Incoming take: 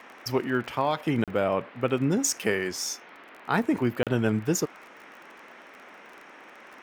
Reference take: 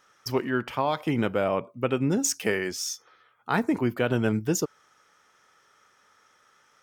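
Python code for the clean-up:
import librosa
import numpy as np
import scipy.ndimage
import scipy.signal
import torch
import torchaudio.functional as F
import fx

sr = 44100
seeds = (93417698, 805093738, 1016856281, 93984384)

y = fx.fix_declick_ar(x, sr, threshold=6.5)
y = fx.fix_interpolate(y, sr, at_s=(1.24, 4.03), length_ms=37.0)
y = fx.noise_reduce(y, sr, print_start_s=2.97, print_end_s=3.47, reduce_db=14.0)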